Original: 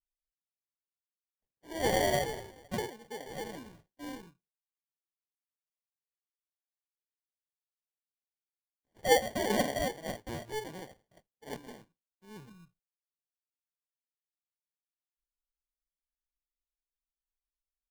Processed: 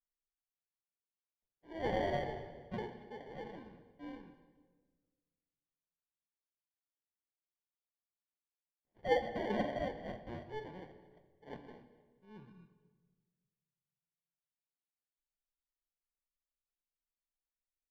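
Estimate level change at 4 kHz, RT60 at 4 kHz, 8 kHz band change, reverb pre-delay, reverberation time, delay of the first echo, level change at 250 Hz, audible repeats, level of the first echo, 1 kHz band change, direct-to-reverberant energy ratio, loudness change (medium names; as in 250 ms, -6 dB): -13.0 dB, 1.1 s, under -25 dB, 6 ms, 1.5 s, 235 ms, -4.5 dB, 2, -20.0 dB, -6.0 dB, 8.0 dB, -7.0 dB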